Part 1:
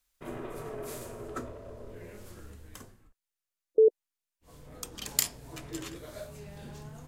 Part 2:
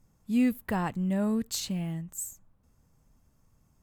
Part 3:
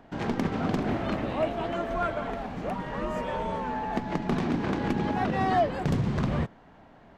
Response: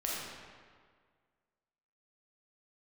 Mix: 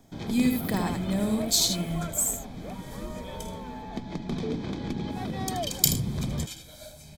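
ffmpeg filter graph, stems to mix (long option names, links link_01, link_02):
-filter_complex "[0:a]aecho=1:1:1.3:0.95,adelay=650,volume=-8dB,asplit=2[link_01][link_02];[link_02]volume=-11dB[link_03];[1:a]volume=-0.5dB,asplit=2[link_04][link_05];[link_05]volume=-4.5dB[link_06];[2:a]lowshelf=frequency=350:gain=9.5,volume=-10.5dB[link_07];[link_03][link_06]amix=inputs=2:normalize=0,aecho=0:1:79:1[link_08];[link_01][link_04][link_07][link_08]amix=inputs=4:normalize=0,asuperstop=centerf=2800:order=8:qfactor=6.9,highshelf=frequency=2300:width_type=q:width=1.5:gain=9.5"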